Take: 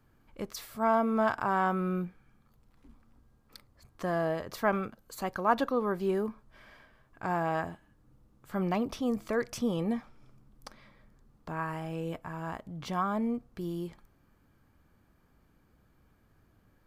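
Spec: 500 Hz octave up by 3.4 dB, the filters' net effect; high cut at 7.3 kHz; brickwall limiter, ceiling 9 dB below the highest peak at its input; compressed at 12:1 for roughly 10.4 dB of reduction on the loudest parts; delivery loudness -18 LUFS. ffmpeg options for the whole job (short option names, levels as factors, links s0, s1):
-af "lowpass=7300,equalizer=f=500:t=o:g=4.5,acompressor=threshold=0.0355:ratio=12,volume=10,alimiter=limit=0.422:level=0:latency=1"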